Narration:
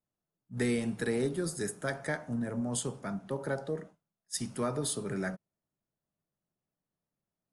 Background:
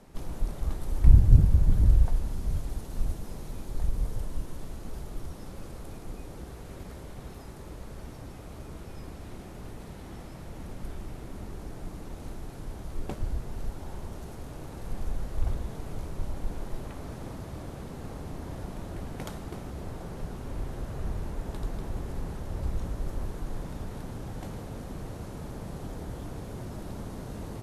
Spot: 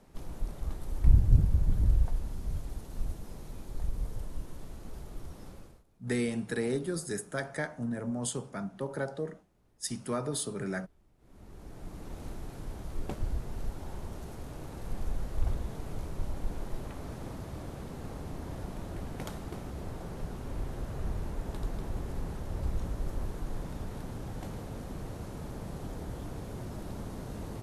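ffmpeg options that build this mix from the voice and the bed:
-filter_complex "[0:a]adelay=5500,volume=0.944[s0];[1:a]volume=10.6,afade=t=out:st=5.48:d=0.36:silence=0.0794328,afade=t=in:st=11.18:d=0.99:silence=0.0530884[s1];[s0][s1]amix=inputs=2:normalize=0"

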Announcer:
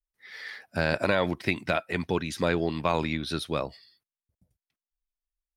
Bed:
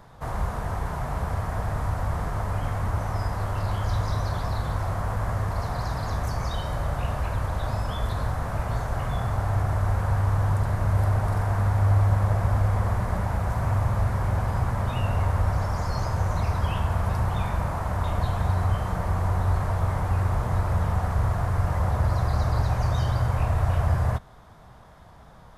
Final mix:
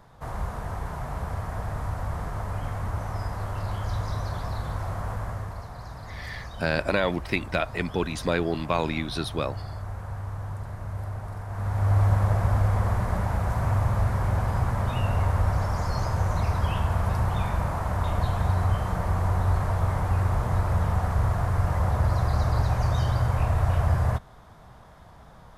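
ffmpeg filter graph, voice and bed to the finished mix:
-filter_complex "[0:a]adelay=5850,volume=1.06[s0];[1:a]volume=2.37,afade=t=out:st=5.1:d=0.57:silence=0.421697,afade=t=in:st=11.48:d=0.56:silence=0.281838[s1];[s0][s1]amix=inputs=2:normalize=0"

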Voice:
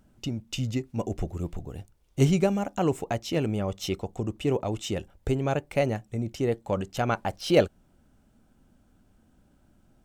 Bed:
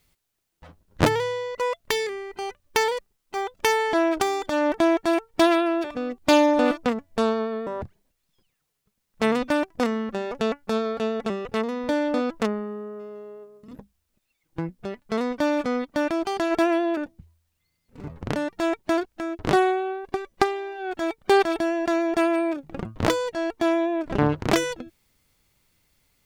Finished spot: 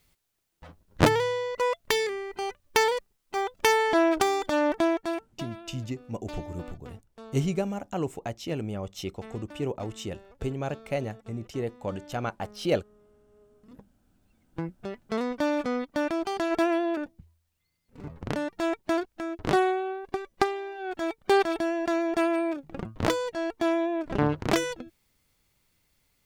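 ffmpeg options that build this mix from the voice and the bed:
-filter_complex "[0:a]adelay=5150,volume=0.562[s0];[1:a]volume=9.44,afade=t=out:st=4.47:d=0.98:silence=0.0707946,afade=t=in:st=13.29:d=0.78:silence=0.1[s1];[s0][s1]amix=inputs=2:normalize=0"

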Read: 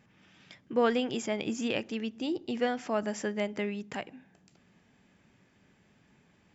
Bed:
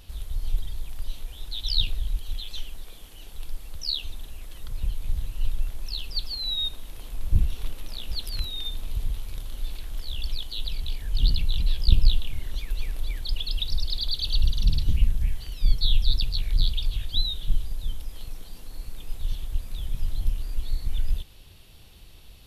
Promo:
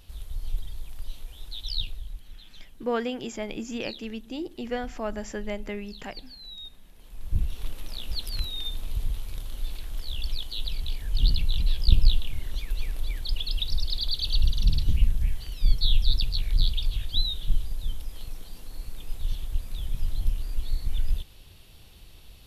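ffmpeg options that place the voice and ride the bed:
-filter_complex "[0:a]adelay=2100,volume=0.841[s0];[1:a]volume=2.99,afade=t=out:st=1.51:d=0.78:silence=0.316228,afade=t=in:st=6.96:d=0.83:silence=0.211349[s1];[s0][s1]amix=inputs=2:normalize=0"

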